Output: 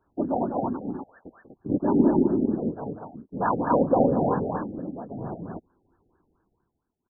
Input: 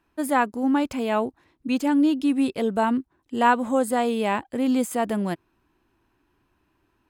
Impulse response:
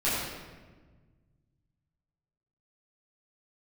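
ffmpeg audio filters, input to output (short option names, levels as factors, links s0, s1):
-filter_complex "[0:a]asettb=1/sr,asplit=3[s0][s1][s2];[s0]atrim=end=0.794[s3];[s1]atrim=start=0.79:end=1.26,asetpts=PTS-STARTPTS,afade=t=in:d=0.004:c=qsin,afade=t=out:st=0.466:d=0.004:c=qsin,lowpass=f=2600:t=q:w=0.5098,lowpass=f=2600:t=q:w=0.6013,lowpass=f=2600:t=q:w=0.9,lowpass=f=2600:t=q:w=2.563,afreqshift=-3100[s4];[s2]atrim=start=1.256[s5];[s3][s4]acrossfade=d=0.004:c1=hsin:c2=qsin[s6];[s6][s5]acrossfade=d=0.004:c1=qsin:c2=hsin,asplit=2[s7][s8];[s8]asoftclip=type=hard:threshold=0.126,volume=0.596[s9];[s7][s9]amix=inputs=2:normalize=0,tremolo=f=0.51:d=0.87,aecho=1:1:192.4|242:0.355|0.708,afftfilt=real='hypot(re,im)*cos(2*PI*random(0))':imag='hypot(re,im)*sin(2*PI*random(1))':win_size=512:overlap=0.75,afftfilt=real='re*lt(b*sr/1024,800*pow(1800/800,0.5+0.5*sin(2*PI*4.4*pts/sr)))':imag='im*lt(b*sr/1024,800*pow(1800/800,0.5+0.5*sin(2*PI*4.4*pts/sr)))':win_size=1024:overlap=0.75,volume=1.33"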